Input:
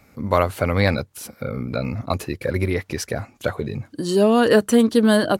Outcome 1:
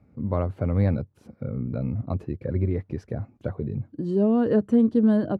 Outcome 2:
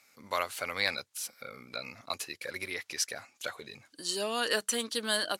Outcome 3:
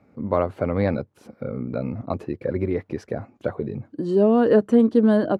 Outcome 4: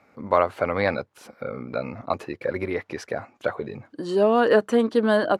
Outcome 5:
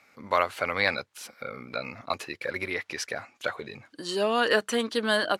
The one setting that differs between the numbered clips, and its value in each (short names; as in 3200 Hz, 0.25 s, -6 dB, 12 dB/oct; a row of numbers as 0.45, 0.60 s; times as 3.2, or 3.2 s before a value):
band-pass, frequency: 120, 6200, 310, 860, 2400 Hz